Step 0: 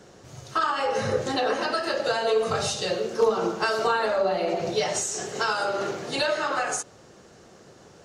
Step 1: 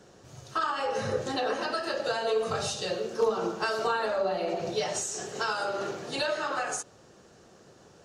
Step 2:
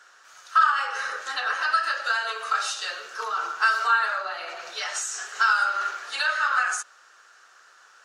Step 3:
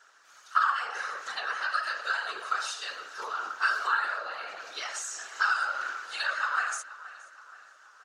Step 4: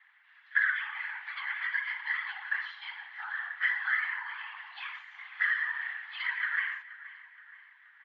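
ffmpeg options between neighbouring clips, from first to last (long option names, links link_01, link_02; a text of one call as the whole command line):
ffmpeg -i in.wav -af "bandreject=frequency=2100:width=15,volume=-4.5dB" out.wav
ffmpeg -i in.wav -af "highpass=frequency=1400:width_type=q:width=3.6,volume=2.5dB" out.wav
ffmpeg -i in.wav -filter_complex "[0:a]afftfilt=real='hypot(re,im)*cos(2*PI*random(0))':imag='hypot(re,im)*sin(2*PI*random(1))':win_size=512:overlap=0.75,asplit=2[link_01][link_02];[link_02]adelay=475,lowpass=frequency=3400:poles=1,volume=-16dB,asplit=2[link_03][link_04];[link_04]adelay=475,lowpass=frequency=3400:poles=1,volume=0.55,asplit=2[link_05][link_06];[link_06]adelay=475,lowpass=frequency=3400:poles=1,volume=0.55,asplit=2[link_07][link_08];[link_08]adelay=475,lowpass=frequency=3400:poles=1,volume=0.55,asplit=2[link_09][link_10];[link_10]adelay=475,lowpass=frequency=3400:poles=1,volume=0.55[link_11];[link_01][link_03][link_05][link_07][link_09][link_11]amix=inputs=6:normalize=0" out.wav
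ffmpeg -i in.wav -af "highpass=frequency=320:width_type=q:width=0.5412,highpass=frequency=320:width_type=q:width=1.307,lowpass=frequency=2900:width_type=q:width=0.5176,lowpass=frequency=2900:width_type=q:width=0.7071,lowpass=frequency=2900:width_type=q:width=1.932,afreqshift=390,volume=-2.5dB" out.wav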